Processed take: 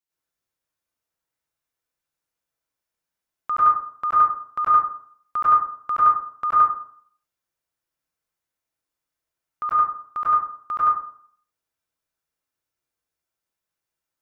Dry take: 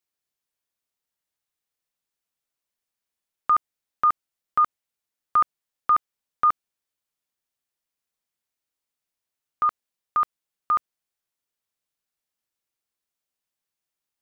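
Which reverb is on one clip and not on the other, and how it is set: plate-style reverb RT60 0.56 s, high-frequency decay 0.35×, pre-delay 85 ms, DRR -8.5 dB; gain -6 dB

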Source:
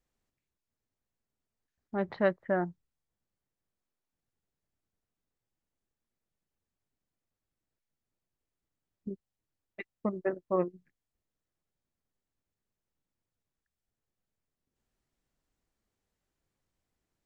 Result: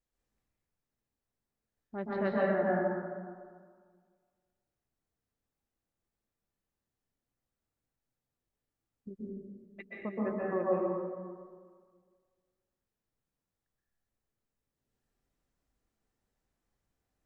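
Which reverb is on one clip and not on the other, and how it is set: plate-style reverb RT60 1.8 s, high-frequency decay 0.4×, pre-delay 0.115 s, DRR -6.5 dB; gain -7 dB

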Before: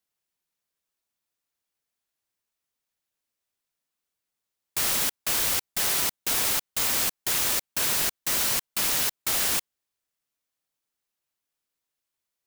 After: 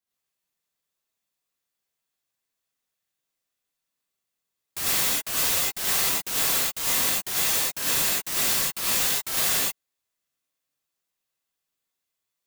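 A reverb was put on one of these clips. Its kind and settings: non-linear reverb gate 0.13 s rising, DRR -7.5 dB; gain -6.5 dB

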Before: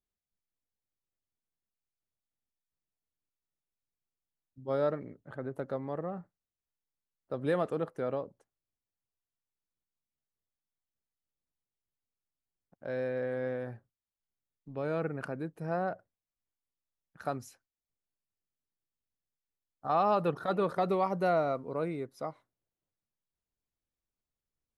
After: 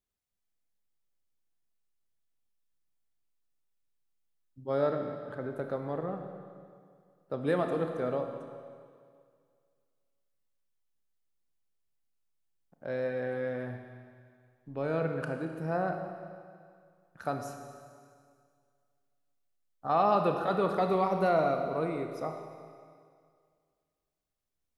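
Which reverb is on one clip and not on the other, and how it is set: Schroeder reverb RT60 2.1 s, combs from 25 ms, DRR 4.5 dB; gain +1 dB

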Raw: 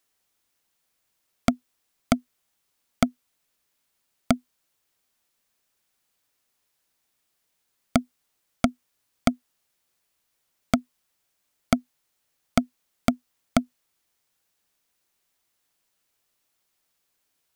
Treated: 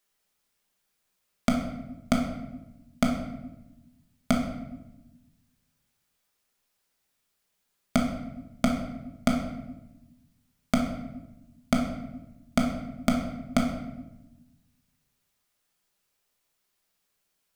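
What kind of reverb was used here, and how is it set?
shoebox room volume 420 m³, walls mixed, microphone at 1.3 m; gain -4 dB

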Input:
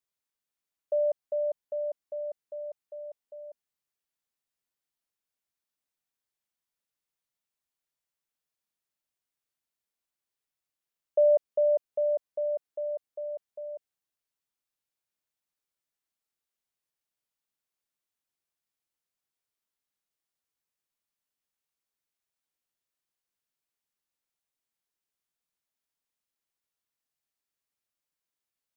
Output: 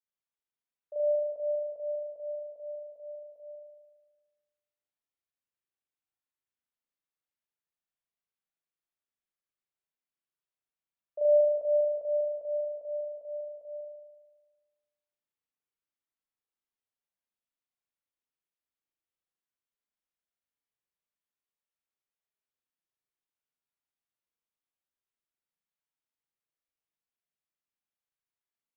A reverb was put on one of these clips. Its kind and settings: spring tank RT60 1.3 s, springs 37 ms, chirp 45 ms, DRR -9 dB; gain -15 dB

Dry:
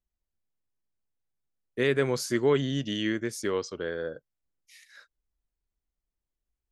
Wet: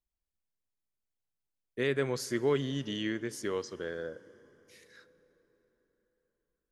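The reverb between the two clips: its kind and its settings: plate-style reverb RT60 4.6 s, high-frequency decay 0.65×, DRR 18 dB; gain -5 dB

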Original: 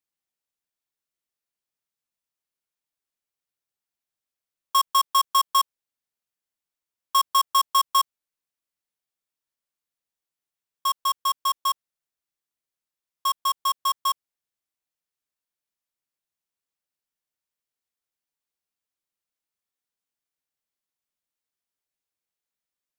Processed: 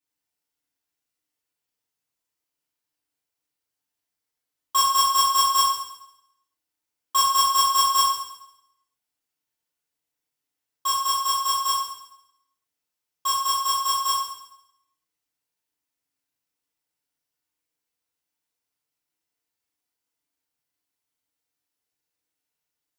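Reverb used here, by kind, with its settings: FDN reverb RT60 0.82 s, low-frequency decay 1×, high-frequency decay 0.95×, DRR -8 dB; gain -4 dB

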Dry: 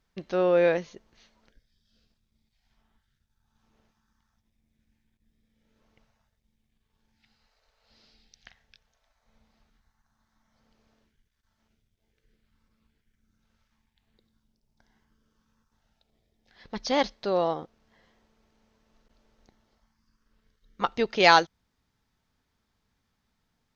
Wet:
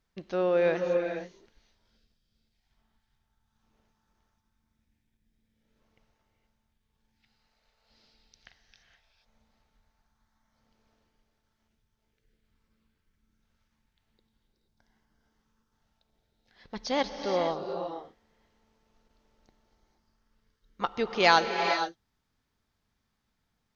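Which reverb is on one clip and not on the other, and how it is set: non-linear reverb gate 0.5 s rising, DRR 5 dB; gain -3.5 dB

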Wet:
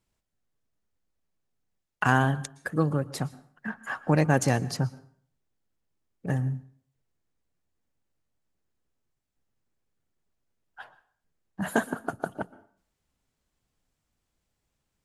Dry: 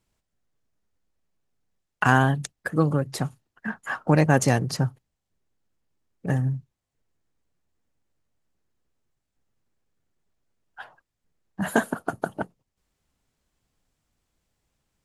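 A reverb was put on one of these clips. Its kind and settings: plate-style reverb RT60 0.53 s, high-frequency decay 0.8×, pre-delay 0.105 s, DRR 19 dB; gain -3.5 dB

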